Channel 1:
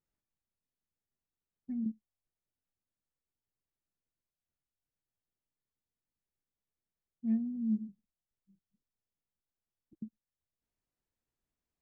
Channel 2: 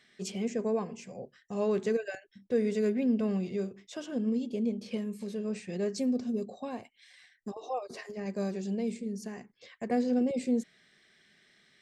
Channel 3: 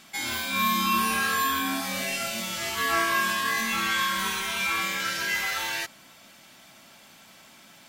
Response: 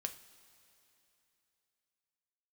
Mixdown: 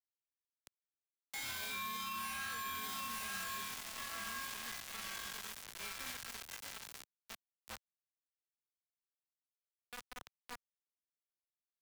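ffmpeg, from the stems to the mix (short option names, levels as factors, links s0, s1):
-filter_complex "[0:a]volume=0.211[s0];[1:a]volume=0.178,asplit=2[s1][s2];[s2]volume=0.251[s3];[2:a]bandreject=f=50:t=h:w=6,bandreject=f=100:t=h:w=6,bandreject=f=150:t=h:w=6,bandreject=f=200:t=h:w=6,bandreject=f=250:t=h:w=6,bandreject=f=300:t=h:w=6,bandreject=f=350:t=h:w=6,bandreject=f=400:t=h:w=6,bandreject=f=450:t=h:w=6,adelay=1200,volume=0.668,afade=t=out:st=2.64:d=0.37:silence=0.251189,asplit=2[s4][s5];[s5]volume=0.398[s6];[s3][s6]amix=inputs=2:normalize=0,aecho=0:1:907|1814|2721|3628|4535:1|0.34|0.116|0.0393|0.0134[s7];[s0][s1][s4][s7]amix=inputs=4:normalize=0,acrusher=bits=5:mix=0:aa=0.000001,acrossover=split=140|680[s8][s9][s10];[s8]acompressor=threshold=0.00251:ratio=4[s11];[s9]acompressor=threshold=0.00112:ratio=4[s12];[s10]acompressor=threshold=0.0224:ratio=4[s13];[s11][s12][s13]amix=inputs=3:normalize=0,alimiter=level_in=2.82:limit=0.0631:level=0:latency=1:release=60,volume=0.355"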